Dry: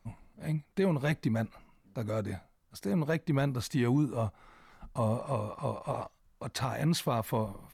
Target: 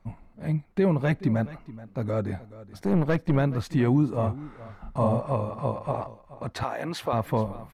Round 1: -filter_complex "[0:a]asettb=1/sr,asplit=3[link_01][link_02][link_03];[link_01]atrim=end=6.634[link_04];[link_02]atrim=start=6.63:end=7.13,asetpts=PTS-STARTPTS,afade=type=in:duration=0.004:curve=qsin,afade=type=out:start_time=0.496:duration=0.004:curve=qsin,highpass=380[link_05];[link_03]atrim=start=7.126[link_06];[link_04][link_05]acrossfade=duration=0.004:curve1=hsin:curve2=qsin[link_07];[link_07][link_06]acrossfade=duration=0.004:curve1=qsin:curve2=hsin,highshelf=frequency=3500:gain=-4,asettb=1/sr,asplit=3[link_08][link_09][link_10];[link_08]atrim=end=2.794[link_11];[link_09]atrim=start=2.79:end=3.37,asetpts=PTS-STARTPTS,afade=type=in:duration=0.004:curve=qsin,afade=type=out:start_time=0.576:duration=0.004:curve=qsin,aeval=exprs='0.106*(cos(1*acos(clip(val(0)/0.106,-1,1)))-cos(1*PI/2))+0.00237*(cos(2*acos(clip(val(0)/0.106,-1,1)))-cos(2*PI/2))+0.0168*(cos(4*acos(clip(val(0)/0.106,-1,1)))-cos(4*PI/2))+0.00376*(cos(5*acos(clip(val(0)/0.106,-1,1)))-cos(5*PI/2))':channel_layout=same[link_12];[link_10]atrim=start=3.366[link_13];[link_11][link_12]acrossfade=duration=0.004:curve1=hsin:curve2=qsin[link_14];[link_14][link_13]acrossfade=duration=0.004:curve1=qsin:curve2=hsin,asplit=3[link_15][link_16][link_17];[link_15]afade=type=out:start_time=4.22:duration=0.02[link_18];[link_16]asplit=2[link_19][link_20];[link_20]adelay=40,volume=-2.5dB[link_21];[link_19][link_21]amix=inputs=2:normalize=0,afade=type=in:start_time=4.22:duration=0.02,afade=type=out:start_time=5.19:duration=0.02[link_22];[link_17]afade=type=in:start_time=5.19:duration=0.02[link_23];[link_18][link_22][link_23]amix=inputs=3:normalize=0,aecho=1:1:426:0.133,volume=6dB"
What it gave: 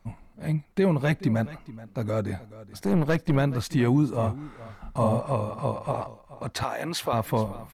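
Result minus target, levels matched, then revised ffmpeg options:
8,000 Hz band +8.0 dB
-filter_complex "[0:a]asettb=1/sr,asplit=3[link_01][link_02][link_03];[link_01]atrim=end=6.634[link_04];[link_02]atrim=start=6.63:end=7.13,asetpts=PTS-STARTPTS,afade=type=in:duration=0.004:curve=qsin,afade=type=out:start_time=0.496:duration=0.004:curve=qsin,highpass=380[link_05];[link_03]atrim=start=7.126[link_06];[link_04][link_05]acrossfade=duration=0.004:curve1=hsin:curve2=qsin[link_07];[link_07][link_06]acrossfade=duration=0.004:curve1=qsin:curve2=hsin,highshelf=frequency=3500:gain=-14,asettb=1/sr,asplit=3[link_08][link_09][link_10];[link_08]atrim=end=2.794[link_11];[link_09]atrim=start=2.79:end=3.37,asetpts=PTS-STARTPTS,afade=type=in:duration=0.004:curve=qsin,afade=type=out:start_time=0.576:duration=0.004:curve=qsin,aeval=exprs='0.106*(cos(1*acos(clip(val(0)/0.106,-1,1)))-cos(1*PI/2))+0.00237*(cos(2*acos(clip(val(0)/0.106,-1,1)))-cos(2*PI/2))+0.0168*(cos(4*acos(clip(val(0)/0.106,-1,1)))-cos(4*PI/2))+0.00376*(cos(5*acos(clip(val(0)/0.106,-1,1)))-cos(5*PI/2))':channel_layout=same[link_12];[link_10]atrim=start=3.366[link_13];[link_11][link_12]acrossfade=duration=0.004:curve1=hsin:curve2=qsin[link_14];[link_14][link_13]acrossfade=duration=0.004:curve1=qsin:curve2=hsin,asplit=3[link_15][link_16][link_17];[link_15]afade=type=out:start_time=4.22:duration=0.02[link_18];[link_16]asplit=2[link_19][link_20];[link_20]adelay=40,volume=-2.5dB[link_21];[link_19][link_21]amix=inputs=2:normalize=0,afade=type=in:start_time=4.22:duration=0.02,afade=type=out:start_time=5.19:duration=0.02[link_22];[link_17]afade=type=in:start_time=5.19:duration=0.02[link_23];[link_18][link_22][link_23]amix=inputs=3:normalize=0,aecho=1:1:426:0.133,volume=6dB"

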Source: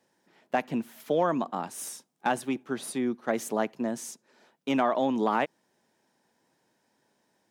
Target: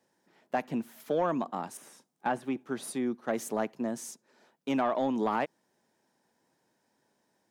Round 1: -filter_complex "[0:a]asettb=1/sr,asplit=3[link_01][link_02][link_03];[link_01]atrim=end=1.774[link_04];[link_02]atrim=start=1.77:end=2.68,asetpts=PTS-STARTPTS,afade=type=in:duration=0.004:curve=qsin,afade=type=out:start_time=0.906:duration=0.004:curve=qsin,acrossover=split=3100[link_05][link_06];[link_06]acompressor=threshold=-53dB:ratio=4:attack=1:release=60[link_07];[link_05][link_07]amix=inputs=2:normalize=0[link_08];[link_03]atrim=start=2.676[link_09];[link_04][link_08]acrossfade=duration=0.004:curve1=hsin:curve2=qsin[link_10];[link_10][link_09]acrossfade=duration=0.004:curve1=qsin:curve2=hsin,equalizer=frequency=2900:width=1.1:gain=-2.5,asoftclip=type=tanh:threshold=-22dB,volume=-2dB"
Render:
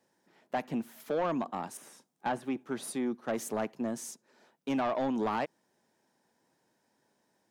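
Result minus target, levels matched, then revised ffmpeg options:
soft clipping: distortion +9 dB
-filter_complex "[0:a]asettb=1/sr,asplit=3[link_01][link_02][link_03];[link_01]atrim=end=1.774[link_04];[link_02]atrim=start=1.77:end=2.68,asetpts=PTS-STARTPTS,afade=type=in:duration=0.004:curve=qsin,afade=type=out:start_time=0.906:duration=0.004:curve=qsin,acrossover=split=3100[link_05][link_06];[link_06]acompressor=threshold=-53dB:ratio=4:attack=1:release=60[link_07];[link_05][link_07]amix=inputs=2:normalize=0[link_08];[link_03]atrim=start=2.676[link_09];[link_04][link_08]acrossfade=duration=0.004:curve1=hsin:curve2=qsin[link_10];[link_10][link_09]acrossfade=duration=0.004:curve1=qsin:curve2=hsin,equalizer=frequency=2900:width=1.1:gain=-2.5,asoftclip=type=tanh:threshold=-15dB,volume=-2dB"

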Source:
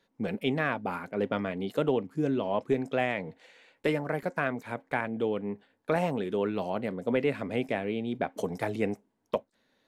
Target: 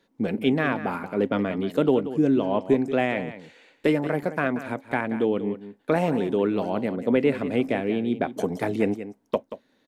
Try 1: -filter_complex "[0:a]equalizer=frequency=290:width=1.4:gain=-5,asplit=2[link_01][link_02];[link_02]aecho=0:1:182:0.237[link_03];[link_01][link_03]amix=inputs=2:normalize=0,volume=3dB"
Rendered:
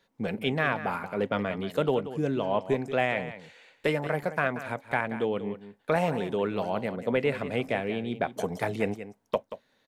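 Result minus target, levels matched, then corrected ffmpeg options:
250 Hz band −4.0 dB
-filter_complex "[0:a]equalizer=frequency=290:width=1.4:gain=6,asplit=2[link_01][link_02];[link_02]aecho=0:1:182:0.237[link_03];[link_01][link_03]amix=inputs=2:normalize=0,volume=3dB"

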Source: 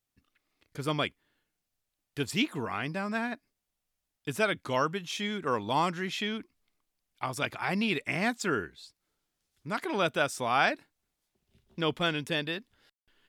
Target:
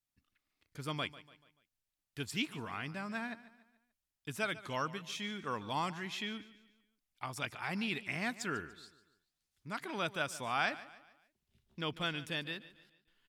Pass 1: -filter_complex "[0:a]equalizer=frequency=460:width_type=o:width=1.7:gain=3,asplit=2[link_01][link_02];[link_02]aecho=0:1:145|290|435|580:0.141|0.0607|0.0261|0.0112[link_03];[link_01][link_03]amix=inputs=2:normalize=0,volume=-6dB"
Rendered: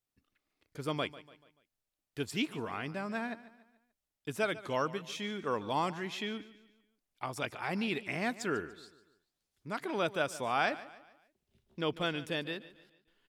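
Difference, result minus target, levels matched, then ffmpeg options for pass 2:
500 Hz band +4.5 dB
-filter_complex "[0:a]equalizer=frequency=460:width_type=o:width=1.7:gain=-5.5,asplit=2[link_01][link_02];[link_02]aecho=0:1:145|290|435|580:0.141|0.0607|0.0261|0.0112[link_03];[link_01][link_03]amix=inputs=2:normalize=0,volume=-6dB"

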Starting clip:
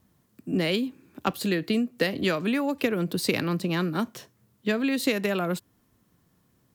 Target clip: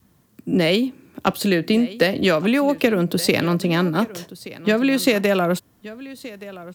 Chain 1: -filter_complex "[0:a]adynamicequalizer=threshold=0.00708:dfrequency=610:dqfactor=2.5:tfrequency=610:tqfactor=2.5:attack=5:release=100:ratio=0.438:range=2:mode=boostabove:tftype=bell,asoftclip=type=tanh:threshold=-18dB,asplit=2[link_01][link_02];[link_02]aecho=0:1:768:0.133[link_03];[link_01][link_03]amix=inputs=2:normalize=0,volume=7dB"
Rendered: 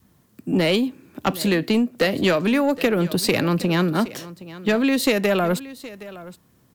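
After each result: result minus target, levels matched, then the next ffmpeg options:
soft clipping: distortion +13 dB; echo 406 ms early
-filter_complex "[0:a]adynamicequalizer=threshold=0.00708:dfrequency=610:dqfactor=2.5:tfrequency=610:tqfactor=2.5:attack=5:release=100:ratio=0.438:range=2:mode=boostabove:tftype=bell,asoftclip=type=tanh:threshold=-9dB,asplit=2[link_01][link_02];[link_02]aecho=0:1:768:0.133[link_03];[link_01][link_03]amix=inputs=2:normalize=0,volume=7dB"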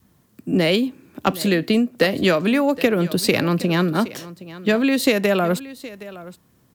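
echo 406 ms early
-filter_complex "[0:a]adynamicequalizer=threshold=0.00708:dfrequency=610:dqfactor=2.5:tfrequency=610:tqfactor=2.5:attack=5:release=100:ratio=0.438:range=2:mode=boostabove:tftype=bell,asoftclip=type=tanh:threshold=-9dB,asplit=2[link_01][link_02];[link_02]aecho=0:1:1174:0.133[link_03];[link_01][link_03]amix=inputs=2:normalize=0,volume=7dB"

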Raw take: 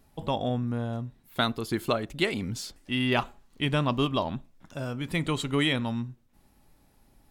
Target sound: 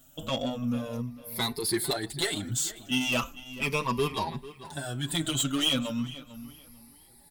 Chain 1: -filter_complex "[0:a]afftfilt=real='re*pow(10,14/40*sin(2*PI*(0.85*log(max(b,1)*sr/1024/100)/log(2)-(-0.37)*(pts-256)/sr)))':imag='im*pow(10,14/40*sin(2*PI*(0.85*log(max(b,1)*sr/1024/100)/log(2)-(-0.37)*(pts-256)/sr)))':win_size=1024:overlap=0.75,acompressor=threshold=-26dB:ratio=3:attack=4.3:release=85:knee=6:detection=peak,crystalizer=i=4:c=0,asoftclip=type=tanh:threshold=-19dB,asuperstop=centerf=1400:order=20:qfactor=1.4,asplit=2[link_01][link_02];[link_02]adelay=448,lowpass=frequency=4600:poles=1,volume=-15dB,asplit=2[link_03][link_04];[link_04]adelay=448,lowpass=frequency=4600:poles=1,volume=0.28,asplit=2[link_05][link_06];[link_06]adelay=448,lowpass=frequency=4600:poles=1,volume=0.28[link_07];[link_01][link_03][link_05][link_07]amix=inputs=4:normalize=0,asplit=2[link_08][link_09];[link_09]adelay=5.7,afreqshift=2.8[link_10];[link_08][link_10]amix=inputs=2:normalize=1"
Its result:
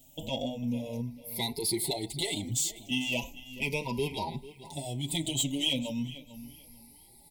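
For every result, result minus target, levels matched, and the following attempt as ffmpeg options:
downward compressor: peak gain reduction +8 dB; 1,000 Hz band −3.5 dB
-filter_complex "[0:a]afftfilt=real='re*pow(10,14/40*sin(2*PI*(0.85*log(max(b,1)*sr/1024/100)/log(2)-(-0.37)*(pts-256)/sr)))':imag='im*pow(10,14/40*sin(2*PI*(0.85*log(max(b,1)*sr/1024/100)/log(2)-(-0.37)*(pts-256)/sr)))':win_size=1024:overlap=0.75,crystalizer=i=4:c=0,asoftclip=type=tanh:threshold=-19dB,asuperstop=centerf=1400:order=20:qfactor=1.4,asplit=2[link_01][link_02];[link_02]adelay=448,lowpass=frequency=4600:poles=1,volume=-15dB,asplit=2[link_03][link_04];[link_04]adelay=448,lowpass=frequency=4600:poles=1,volume=0.28,asplit=2[link_05][link_06];[link_06]adelay=448,lowpass=frequency=4600:poles=1,volume=0.28[link_07];[link_01][link_03][link_05][link_07]amix=inputs=4:normalize=0,asplit=2[link_08][link_09];[link_09]adelay=5.7,afreqshift=2.8[link_10];[link_08][link_10]amix=inputs=2:normalize=1"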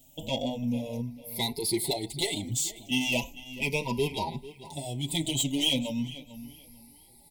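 1,000 Hz band −3.0 dB
-filter_complex "[0:a]afftfilt=real='re*pow(10,14/40*sin(2*PI*(0.85*log(max(b,1)*sr/1024/100)/log(2)-(-0.37)*(pts-256)/sr)))':imag='im*pow(10,14/40*sin(2*PI*(0.85*log(max(b,1)*sr/1024/100)/log(2)-(-0.37)*(pts-256)/sr)))':win_size=1024:overlap=0.75,crystalizer=i=4:c=0,asoftclip=type=tanh:threshold=-19dB,asplit=2[link_01][link_02];[link_02]adelay=448,lowpass=frequency=4600:poles=1,volume=-15dB,asplit=2[link_03][link_04];[link_04]adelay=448,lowpass=frequency=4600:poles=1,volume=0.28,asplit=2[link_05][link_06];[link_06]adelay=448,lowpass=frequency=4600:poles=1,volume=0.28[link_07];[link_01][link_03][link_05][link_07]amix=inputs=4:normalize=0,asplit=2[link_08][link_09];[link_09]adelay=5.7,afreqshift=2.8[link_10];[link_08][link_10]amix=inputs=2:normalize=1"

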